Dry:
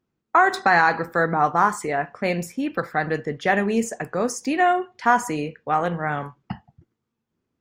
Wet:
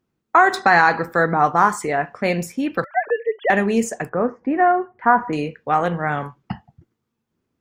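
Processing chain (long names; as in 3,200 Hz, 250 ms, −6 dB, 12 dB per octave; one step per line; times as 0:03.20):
0:02.84–0:03.50: three sine waves on the formant tracks
0:04.09–0:05.33: low-pass filter 1,700 Hz 24 dB per octave
level +3 dB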